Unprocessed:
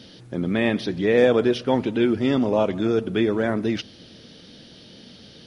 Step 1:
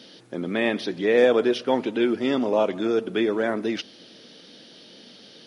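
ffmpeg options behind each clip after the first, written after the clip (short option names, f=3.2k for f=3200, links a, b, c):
-af "highpass=270"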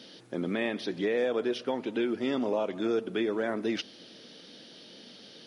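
-af "alimiter=limit=-17dB:level=0:latency=1:release=367,volume=-2.5dB"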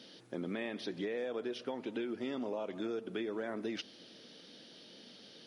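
-af "acompressor=threshold=-29dB:ratio=6,volume=-5dB"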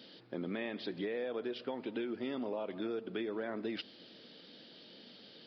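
-af "aresample=11025,aresample=44100"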